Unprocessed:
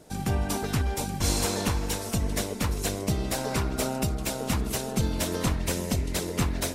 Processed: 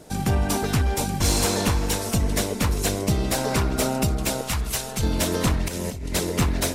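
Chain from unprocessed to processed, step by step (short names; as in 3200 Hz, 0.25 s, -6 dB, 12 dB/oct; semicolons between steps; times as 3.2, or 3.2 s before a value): soft clip -17.5 dBFS, distortion -21 dB; 4.41–5.03 bell 280 Hz -12 dB 2.3 oct; 5.68–6.14 negative-ratio compressor -36 dBFS, ratio -1; gain +6 dB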